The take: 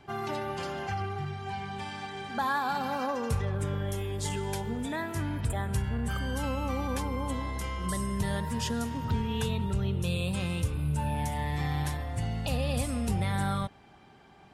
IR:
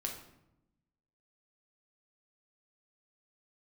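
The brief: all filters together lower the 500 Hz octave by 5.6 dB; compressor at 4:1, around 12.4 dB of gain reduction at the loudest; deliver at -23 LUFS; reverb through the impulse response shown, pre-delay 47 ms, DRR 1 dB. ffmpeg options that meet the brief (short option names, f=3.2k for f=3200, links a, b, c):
-filter_complex "[0:a]equalizer=f=500:t=o:g=-7,acompressor=threshold=-40dB:ratio=4,asplit=2[a][b];[1:a]atrim=start_sample=2205,adelay=47[c];[b][c]afir=irnorm=-1:irlink=0,volume=-1.5dB[d];[a][d]amix=inputs=2:normalize=0,volume=16.5dB"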